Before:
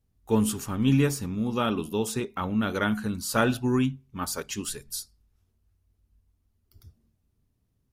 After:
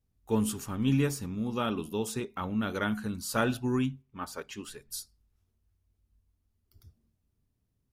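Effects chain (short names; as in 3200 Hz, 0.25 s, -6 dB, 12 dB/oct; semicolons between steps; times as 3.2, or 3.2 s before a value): 4.02–4.91 tone controls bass -6 dB, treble -10 dB; gain -4.5 dB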